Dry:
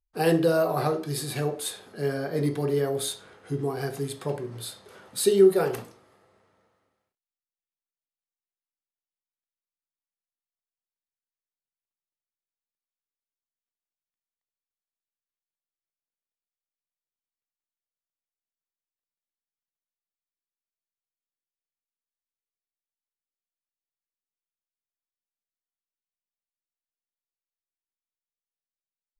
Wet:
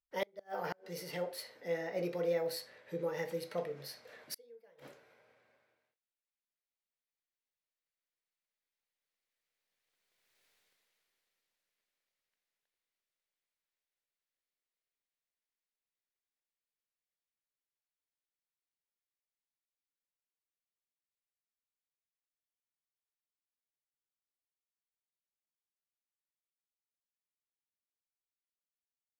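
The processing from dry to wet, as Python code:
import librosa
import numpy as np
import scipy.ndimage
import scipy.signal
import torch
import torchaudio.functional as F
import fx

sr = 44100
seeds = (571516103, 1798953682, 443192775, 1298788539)

y = fx.doppler_pass(x, sr, speed_mps=57, closest_m=12.0, pass_at_s=10.46)
y = fx.gate_flip(y, sr, shuts_db=-47.0, range_db=-35)
y = fx.graphic_eq_10(y, sr, hz=(500, 2000, 4000), db=(9, 10, 6))
y = y * librosa.db_to_amplitude(17.5)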